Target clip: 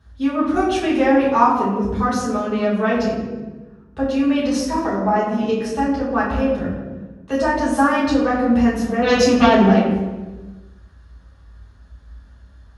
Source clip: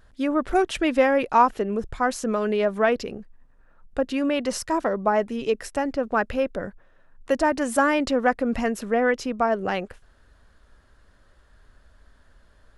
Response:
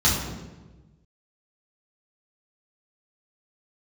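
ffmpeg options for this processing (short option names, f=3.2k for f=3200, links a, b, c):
-filter_complex "[0:a]asettb=1/sr,asplit=3[a][b][c];[a]atrim=end=9.024[d];[b]atrim=start=9.02:end=9.67,asetpts=PTS-STARTPTS,afade=t=in:d=0.004:c=qsin,afade=t=out:st=0.646:d=0.004:c=qsin,aeval=exprs='0.316*sin(PI/2*2.24*val(0)/0.316)':c=same[e];[c]atrim=start=9.666[f];[d][e]acrossfade=d=0.004:c1=hsin:c2=qsin[g];[g][f]acrossfade=d=0.004:c1=qsin:c2=hsin[h];[1:a]atrim=start_sample=2205,asetrate=40572,aresample=44100[i];[h][i]afir=irnorm=-1:irlink=0,volume=-14.5dB"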